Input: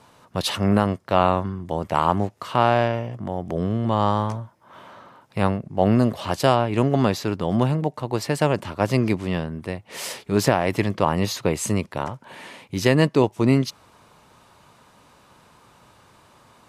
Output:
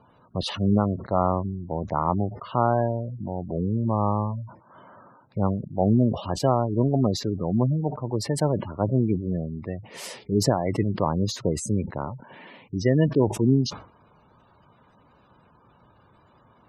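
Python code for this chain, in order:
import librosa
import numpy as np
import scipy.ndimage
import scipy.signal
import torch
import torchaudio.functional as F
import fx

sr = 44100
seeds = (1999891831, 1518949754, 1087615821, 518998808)

y = fx.spec_gate(x, sr, threshold_db=-15, keep='strong')
y = fx.low_shelf(y, sr, hz=400.0, db=5.0)
y = fx.sustainer(y, sr, db_per_s=120.0)
y = y * 10.0 ** (-5.5 / 20.0)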